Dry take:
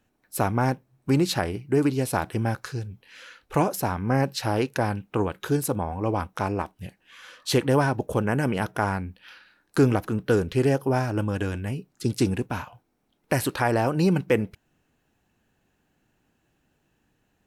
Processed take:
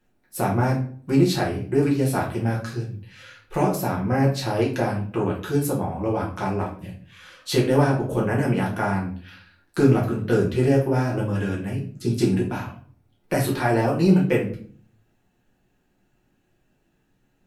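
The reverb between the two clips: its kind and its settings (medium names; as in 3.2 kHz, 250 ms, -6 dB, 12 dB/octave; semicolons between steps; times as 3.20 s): simulated room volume 40 m³, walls mixed, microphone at 0.96 m; trim -5 dB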